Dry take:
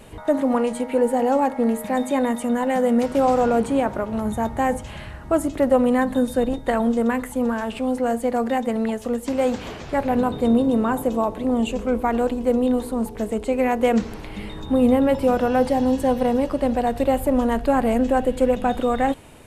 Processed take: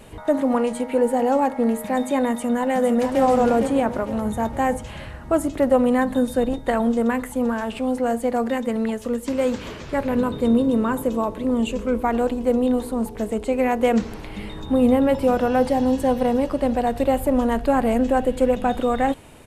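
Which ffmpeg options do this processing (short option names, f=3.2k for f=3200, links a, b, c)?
-filter_complex "[0:a]asplit=2[a][b];[b]afade=t=in:st=2.32:d=0.01,afade=t=out:st=3.21:d=0.01,aecho=0:1:460|920|1380|1840|2300:0.501187|0.225534|0.10149|0.0456707|0.0205518[c];[a][c]amix=inputs=2:normalize=0,asettb=1/sr,asplit=3[d][e][f];[d]atrim=end=8.504[g];[e]atrim=start=8.5:end=12.04,asetpts=PTS-STARTPTS,afade=t=in:d=0.004:c=qsin,afade=t=out:st=3.536:d=0.004:c=qsin,equalizer=f=750:w=7.3:g=-11.5[h];[f]atrim=start=12.036[i];[g][h]acrossfade=d=0.004:c1=hsin:c2=qsin[j];[j][i]acrossfade=d=0.004:c1=qsin:c2=hsin"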